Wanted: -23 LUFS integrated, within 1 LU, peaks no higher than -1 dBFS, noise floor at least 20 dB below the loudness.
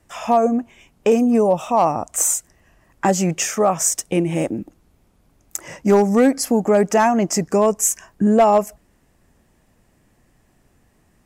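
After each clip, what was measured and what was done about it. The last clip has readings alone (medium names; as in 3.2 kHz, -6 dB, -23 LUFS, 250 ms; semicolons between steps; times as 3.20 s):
clipped samples 0.6%; clipping level -7.5 dBFS; loudness -18.0 LUFS; peak level -7.5 dBFS; loudness target -23.0 LUFS
-> clip repair -7.5 dBFS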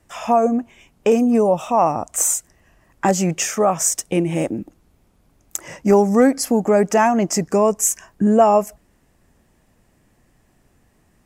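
clipped samples 0.0%; loudness -18.0 LUFS; peak level -1.5 dBFS; loudness target -23.0 LUFS
-> trim -5 dB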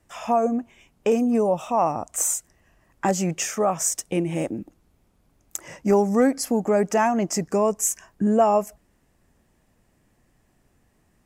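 loudness -23.0 LUFS; peak level -6.5 dBFS; noise floor -65 dBFS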